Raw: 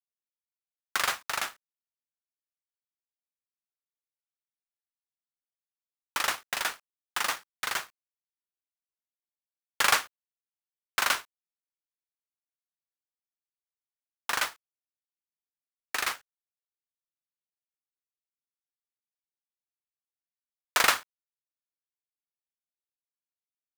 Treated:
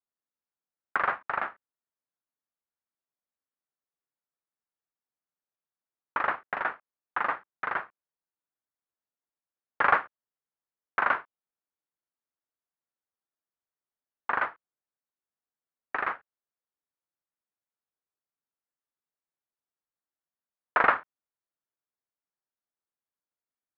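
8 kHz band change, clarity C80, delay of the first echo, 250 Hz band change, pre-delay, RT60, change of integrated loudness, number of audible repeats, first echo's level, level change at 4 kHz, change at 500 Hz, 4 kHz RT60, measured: under -40 dB, none, none, +3.5 dB, none, none, -0.5 dB, none, none, -19.0 dB, +4.5 dB, none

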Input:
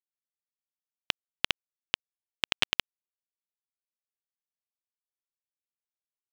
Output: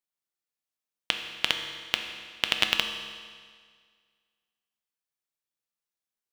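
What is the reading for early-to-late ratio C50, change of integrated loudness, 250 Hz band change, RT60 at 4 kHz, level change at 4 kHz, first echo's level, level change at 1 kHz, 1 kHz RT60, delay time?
6.0 dB, +3.0 dB, +4.0 dB, 1.7 s, +4.0 dB, none, +4.0 dB, 1.8 s, none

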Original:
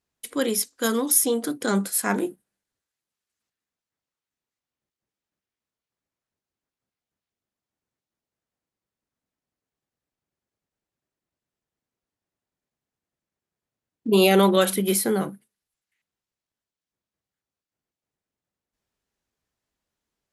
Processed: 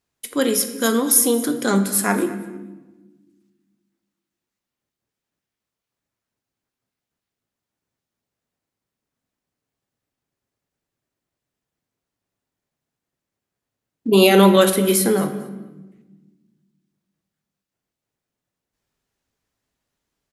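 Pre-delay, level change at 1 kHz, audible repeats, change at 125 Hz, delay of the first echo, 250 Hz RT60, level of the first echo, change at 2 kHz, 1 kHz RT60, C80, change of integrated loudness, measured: 7 ms, +4.5 dB, 2, +5.5 dB, 0.226 s, 2.0 s, -19.0 dB, +4.5 dB, 1.0 s, 12.0 dB, +4.5 dB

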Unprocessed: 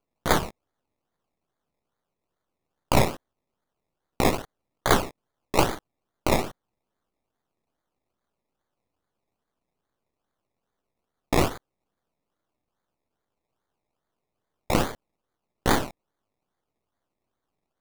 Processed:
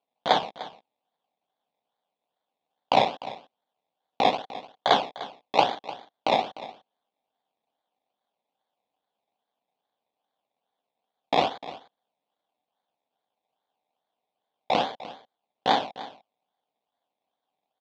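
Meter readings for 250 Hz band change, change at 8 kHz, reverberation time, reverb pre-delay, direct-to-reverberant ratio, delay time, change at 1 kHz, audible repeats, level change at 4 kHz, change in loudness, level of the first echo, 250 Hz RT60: -7.0 dB, under -15 dB, none, none, none, 0.3 s, +4.0 dB, 1, +3.5 dB, 0.0 dB, -16.5 dB, none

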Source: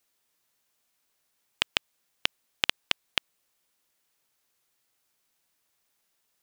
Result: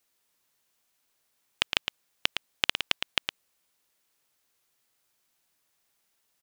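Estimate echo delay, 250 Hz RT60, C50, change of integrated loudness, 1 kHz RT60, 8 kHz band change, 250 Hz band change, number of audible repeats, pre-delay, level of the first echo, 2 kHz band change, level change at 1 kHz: 0.112 s, none, none, +0.5 dB, none, +1.0 dB, +1.0 dB, 1, none, -7.0 dB, +1.0 dB, +1.0 dB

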